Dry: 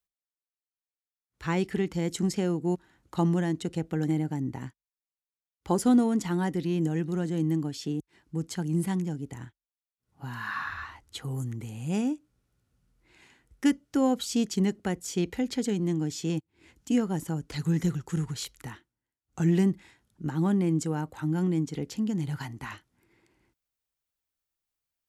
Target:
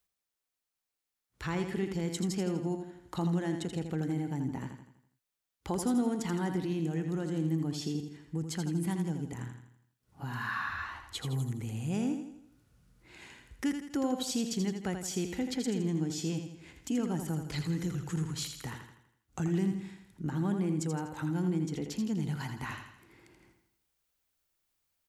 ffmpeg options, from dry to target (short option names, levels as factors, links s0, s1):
-filter_complex "[0:a]asplit=2[s0][s1];[s1]alimiter=limit=0.0668:level=0:latency=1,volume=1.41[s2];[s0][s2]amix=inputs=2:normalize=0,acompressor=threshold=0.00501:ratio=1.5,aecho=1:1:82|164|246|328|410|492:0.447|0.21|0.0987|0.0464|0.0218|0.0102,volume=0.841"